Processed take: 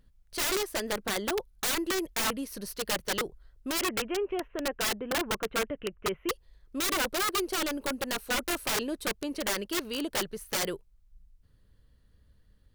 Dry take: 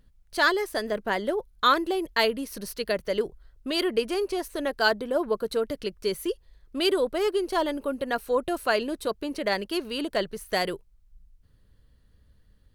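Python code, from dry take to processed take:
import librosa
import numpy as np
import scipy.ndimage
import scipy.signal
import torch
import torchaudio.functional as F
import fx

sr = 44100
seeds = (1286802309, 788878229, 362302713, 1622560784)

y = fx.ellip_lowpass(x, sr, hz=2900.0, order=4, stop_db=40, at=(3.81, 6.29))
y = (np.mod(10.0 ** (21.0 / 20.0) * y + 1.0, 2.0) - 1.0) / 10.0 ** (21.0 / 20.0)
y = y * librosa.db_to_amplitude(-2.5)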